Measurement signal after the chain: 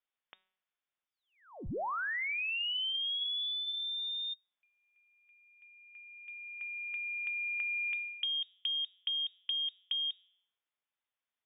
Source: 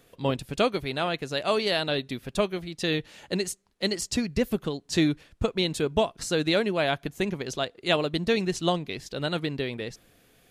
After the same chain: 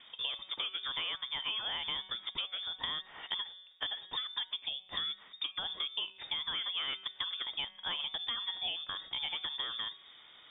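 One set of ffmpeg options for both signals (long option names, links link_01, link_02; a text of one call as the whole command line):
ffmpeg -i in.wav -filter_complex "[0:a]bandreject=frequency=184.1:width_type=h:width=4,bandreject=frequency=368.2:width_type=h:width=4,bandreject=frequency=552.3:width_type=h:width=4,bandreject=frequency=736.4:width_type=h:width=4,bandreject=frequency=920.5:width_type=h:width=4,bandreject=frequency=1104.6:width_type=h:width=4,bandreject=frequency=1288.7:width_type=h:width=4,bandreject=frequency=1472.8:width_type=h:width=4,bandreject=frequency=1656.9:width_type=h:width=4,bandreject=frequency=1841:width_type=h:width=4,bandreject=frequency=2025.1:width_type=h:width=4,bandreject=frequency=2209.2:width_type=h:width=4,bandreject=frequency=2393.3:width_type=h:width=4,bandreject=frequency=2577.4:width_type=h:width=4,bandreject=frequency=2761.5:width_type=h:width=4,bandreject=frequency=2945.6:width_type=h:width=4,bandreject=frequency=3129.7:width_type=h:width=4,bandreject=frequency=3313.8:width_type=h:width=4,bandreject=frequency=3497.9:width_type=h:width=4,bandreject=frequency=3682:width_type=h:width=4,bandreject=frequency=3866.1:width_type=h:width=4,bandreject=frequency=4050.2:width_type=h:width=4,bandreject=frequency=4234.3:width_type=h:width=4,bandreject=frequency=4418.4:width_type=h:width=4,bandreject=frequency=4602.5:width_type=h:width=4,bandreject=frequency=4786.6:width_type=h:width=4,alimiter=limit=-17dB:level=0:latency=1:release=357,acrossover=split=290|630[link_01][link_02][link_03];[link_01]acompressor=threshold=-37dB:ratio=4[link_04];[link_02]acompressor=threshold=-30dB:ratio=4[link_05];[link_03]acompressor=threshold=-28dB:ratio=4[link_06];[link_04][link_05][link_06]amix=inputs=3:normalize=0,lowpass=frequency=3100:width_type=q:width=0.5098,lowpass=frequency=3100:width_type=q:width=0.6013,lowpass=frequency=3100:width_type=q:width=0.9,lowpass=frequency=3100:width_type=q:width=2.563,afreqshift=-3700,acompressor=threshold=-43dB:ratio=3,volume=5dB" out.wav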